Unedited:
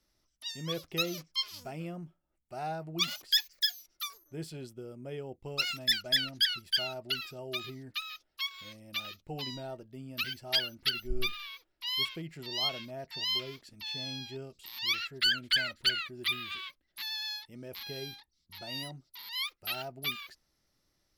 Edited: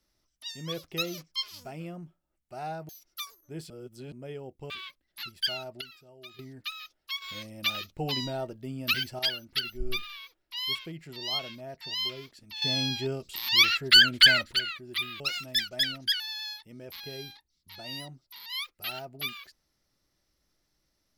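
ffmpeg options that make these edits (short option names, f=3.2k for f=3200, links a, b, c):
-filter_complex "[0:a]asplit=14[a][b][c][d][e][f][g][h][i][j][k][l][m][n];[a]atrim=end=2.892[o];[b]atrim=start=3.718:end=4.532[p];[c]atrim=start=4.528:end=4.952,asetpts=PTS-STARTPTS,areverse[q];[d]atrim=start=4.948:end=5.532[r];[e]atrim=start=16.498:end=17.032[s];[f]atrim=start=6.528:end=7.112[t];[g]atrim=start=7.108:end=7.692,asetpts=PTS-STARTPTS,volume=-11.5dB[u];[h]atrim=start=7.688:end=8.522[v];[i]atrim=start=8.518:end=10.492,asetpts=PTS-STARTPTS,volume=7.5dB[w];[j]atrim=start=10.488:end=13.922[x];[k]atrim=start=13.918:end=15.832,asetpts=PTS-STARTPTS,volume=10.5dB[y];[l]atrim=start=15.828:end=16.502[z];[m]atrim=start=5.528:end=6.532[aa];[n]atrim=start=17.028[ab];[o][p]acrossfade=d=0.004:c1=hsin:c2=hsin[ac];[ac][q]acrossfade=d=0.004:c1=hsin:c2=hsin[ad];[ad][r]acrossfade=d=0.004:c1=hsin:c2=hsin[ae];[ae][s]acrossfade=d=0.004:c1=hsin:c2=hsin[af];[af][t]acrossfade=d=0.004:c1=hsin:c2=hsin[ag];[ag][u]acrossfade=d=0.004:c1=hsin:c2=hsin[ah];[ah][v]acrossfade=d=0.004:c1=hsin:c2=hsin[ai];[ai][w]acrossfade=d=0.004:c1=hsin:c2=hsin[aj];[aj][x]acrossfade=d=0.004:c1=hsin:c2=hsin[ak];[ak][y]acrossfade=d=0.004:c1=hsin:c2=hsin[al];[al][z]acrossfade=d=0.004:c1=hsin:c2=hsin[am];[am][aa]acrossfade=d=0.004:c1=hsin:c2=hsin[an];[an][ab]acrossfade=d=0.004:c1=hsin:c2=hsin"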